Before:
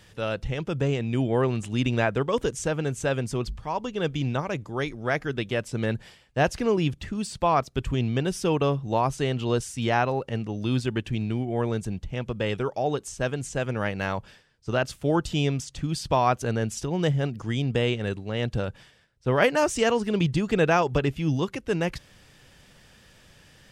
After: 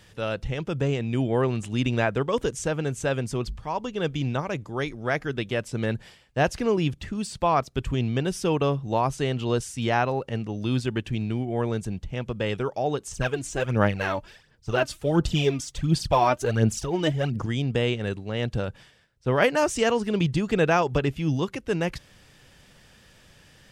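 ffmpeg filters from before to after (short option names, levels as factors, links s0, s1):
-filter_complex "[0:a]asettb=1/sr,asplit=3[s0][s1][s2];[s0]atrim=end=13.114[s3];[s1]atrim=start=13.11:end=17.46,asetpts=PTS-STARTPTS,afade=t=in:d=0.004:c=qsin,afade=t=out:st=4.346:d=0.004:c=qsin,aphaser=in_gain=1:out_gain=1:delay=3.4:decay=0.63:speed=1.4:type=sinusoidal[s4];[s2]atrim=start=17.456[s5];[s3][s4]acrossfade=d=0.004:c1=hsin:c2=qsin[s6];[s6][s5]acrossfade=d=0.004:c1=qsin:c2=hsin"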